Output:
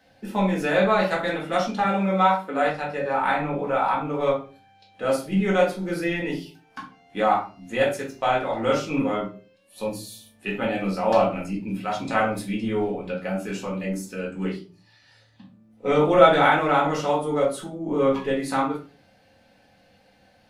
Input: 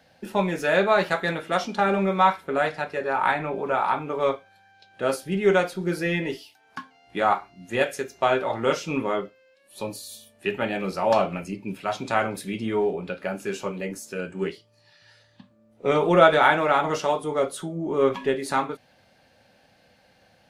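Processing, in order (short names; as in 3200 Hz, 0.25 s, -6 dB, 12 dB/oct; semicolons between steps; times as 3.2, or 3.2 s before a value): 1.8–2.65 HPF 220 Hz; reverb, pre-delay 4 ms, DRR -2 dB; gain -4 dB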